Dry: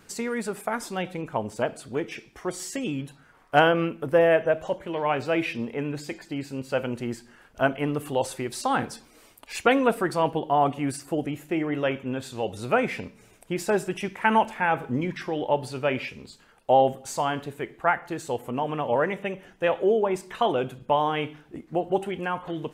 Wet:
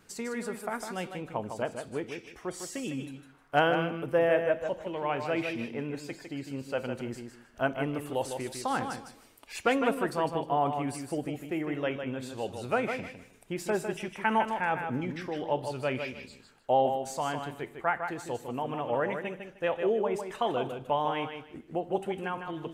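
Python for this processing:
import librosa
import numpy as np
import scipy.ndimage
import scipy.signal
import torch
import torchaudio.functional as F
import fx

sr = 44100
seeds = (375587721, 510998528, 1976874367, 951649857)

y = fx.echo_feedback(x, sr, ms=154, feedback_pct=21, wet_db=-7.0)
y = y * librosa.db_to_amplitude(-6.0)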